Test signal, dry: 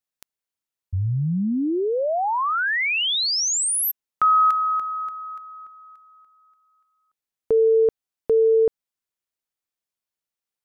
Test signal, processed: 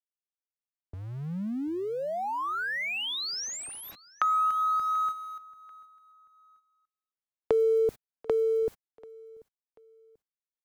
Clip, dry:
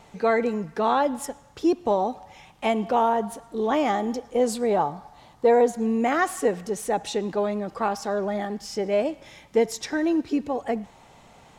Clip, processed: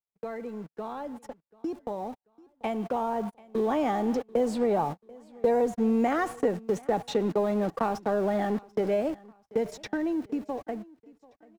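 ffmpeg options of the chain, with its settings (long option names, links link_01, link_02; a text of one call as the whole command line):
ffmpeg -i in.wav -filter_complex "[0:a]aeval=exprs='val(0)+0.5*0.0188*sgn(val(0))':channel_layout=same,agate=range=-59dB:threshold=-30dB:ratio=16:release=78:detection=rms,acrossover=split=200|5300[link_01][link_02][link_03];[link_01]acompressor=threshold=-44dB:ratio=2[link_04];[link_02]acompressor=threshold=-28dB:ratio=4[link_05];[link_03]acompressor=threshold=-50dB:ratio=2[link_06];[link_04][link_05][link_06]amix=inputs=3:normalize=0,highshelf=frequency=2700:gain=-10.5,dynaudnorm=framelen=640:gausssize=9:maxgain=11.5dB,aecho=1:1:738|1476:0.0708|0.0241,volume=-7dB" out.wav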